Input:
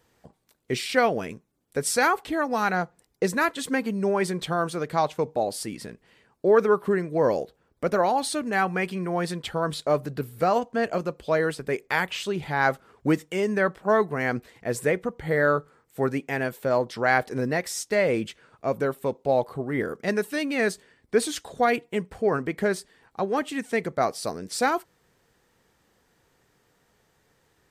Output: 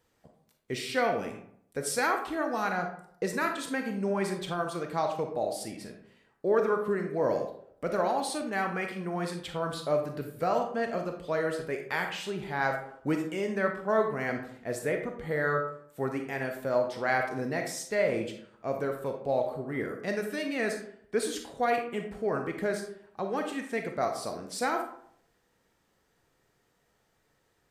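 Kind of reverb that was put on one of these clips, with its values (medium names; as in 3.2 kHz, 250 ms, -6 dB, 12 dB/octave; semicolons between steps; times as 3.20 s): algorithmic reverb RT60 0.66 s, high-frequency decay 0.55×, pre-delay 0 ms, DRR 3.5 dB; trim -7 dB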